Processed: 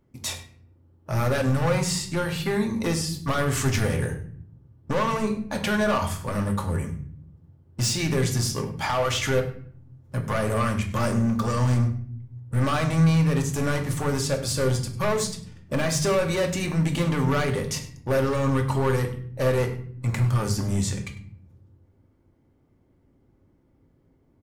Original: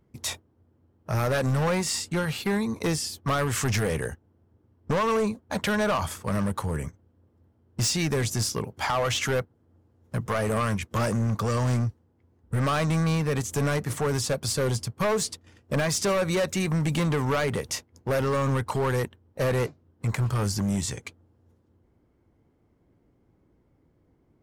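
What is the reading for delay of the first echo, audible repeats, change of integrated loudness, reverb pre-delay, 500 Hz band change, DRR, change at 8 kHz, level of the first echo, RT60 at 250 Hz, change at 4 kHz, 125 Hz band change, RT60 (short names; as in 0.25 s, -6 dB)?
0.1 s, 1, +2.0 dB, 3 ms, +1.5 dB, 3.0 dB, +0.5 dB, -17.0 dB, 1.2 s, +0.5 dB, +3.0 dB, 0.60 s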